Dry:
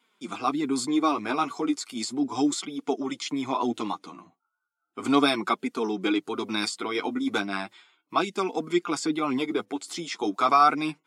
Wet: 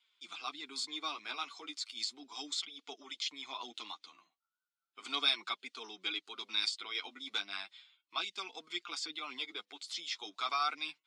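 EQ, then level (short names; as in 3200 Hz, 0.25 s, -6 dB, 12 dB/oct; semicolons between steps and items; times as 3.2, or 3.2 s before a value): HPF 130 Hz; synth low-pass 3800 Hz, resonance Q 1.8; differentiator; 0.0 dB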